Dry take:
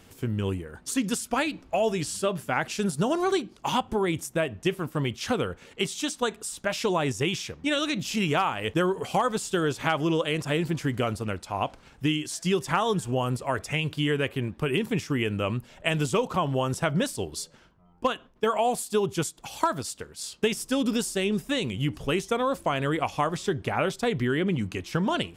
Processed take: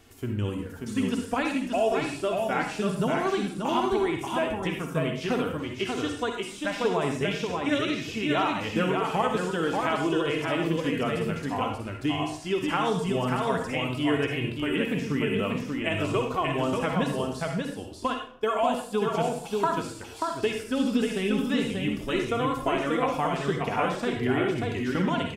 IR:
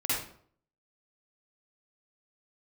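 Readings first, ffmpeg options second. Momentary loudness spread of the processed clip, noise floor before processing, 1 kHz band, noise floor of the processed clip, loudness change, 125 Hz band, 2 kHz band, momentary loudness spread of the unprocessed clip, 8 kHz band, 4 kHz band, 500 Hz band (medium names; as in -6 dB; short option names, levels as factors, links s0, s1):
5 LU, -56 dBFS, +0.5 dB, -40 dBFS, 0.0 dB, -2.0 dB, 0.0 dB, 5 LU, -8.5 dB, -2.0 dB, +0.5 dB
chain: -filter_complex "[0:a]asplit=2[s0][s1];[1:a]atrim=start_sample=2205[s2];[s1][s2]afir=irnorm=-1:irlink=0,volume=0.335[s3];[s0][s3]amix=inputs=2:normalize=0,acrossover=split=3400[s4][s5];[s5]acompressor=threshold=0.00891:ratio=4:attack=1:release=60[s6];[s4][s6]amix=inputs=2:normalize=0,aecho=1:1:586:0.668,flanger=delay=2.7:depth=1.9:regen=-31:speed=0.49:shape=sinusoidal,volume=0.891"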